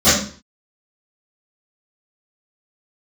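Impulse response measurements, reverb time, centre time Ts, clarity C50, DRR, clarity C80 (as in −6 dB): 0.45 s, 53 ms, 1.0 dB, −20.5 dB, 7.0 dB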